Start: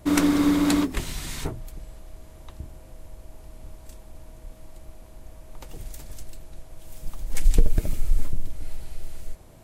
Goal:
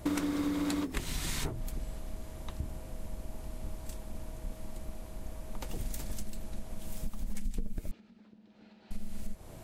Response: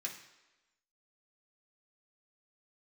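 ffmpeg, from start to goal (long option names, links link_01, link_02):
-filter_complex "[0:a]acompressor=threshold=-31dB:ratio=12,tremolo=f=210:d=0.333,asettb=1/sr,asplit=3[link_01][link_02][link_03];[link_01]atrim=end=7.914[link_04];[link_02]atrim=start=7.91:end=8.91,asetpts=PTS-STARTPTS,afade=type=in:duration=0.004:curve=qsin,afade=type=out:start_time=0.996:duration=0.004:curve=qsin,highpass=380,equalizer=frequency=610:width_type=q:width=4:gain=-6,equalizer=frequency=1100:width_type=q:width=4:gain=-6,equalizer=frequency=2100:width_type=q:width=4:gain=-6,equalizer=frequency=3200:width_type=q:width=4:gain=-4,lowpass=frequency=3900:width=0.5412,lowpass=frequency=3900:width=1.3066[link_05];[link_03]atrim=start=8.906[link_06];[link_04][link_05]acrossfade=duration=0.004:curve1=hsin:curve2=qsin[link_07];[link_07][link_06]acrossfade=duration=0.004:curve1=qsin:curve2=hsin,volume=3.5dB"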